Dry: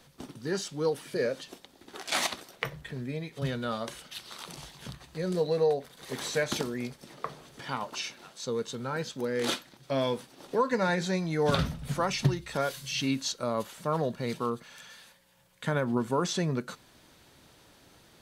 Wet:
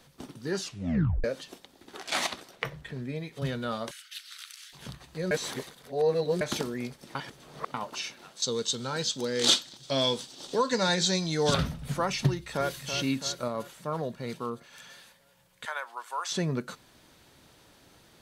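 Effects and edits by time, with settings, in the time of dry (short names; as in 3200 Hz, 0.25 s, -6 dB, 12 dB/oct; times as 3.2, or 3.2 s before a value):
0.59 tape stop 0.65 s
1.96–3.16 high shelf 9900 Hz -7 dB
3.91–4.73 steep high-pass 1400 Hz 48 dB/oct
5.31–6.41 reverse
7.15–7.74 reverse
8.42–11.54 band shelf 5100 Hz +12.5 dB
12.27–12.85 echo throw 0.33 s, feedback 60%, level -8.5 dB
13.48–14.73 gain -3.5 dB
15.65–16.32 HPF 800 Hz 24 dB/oct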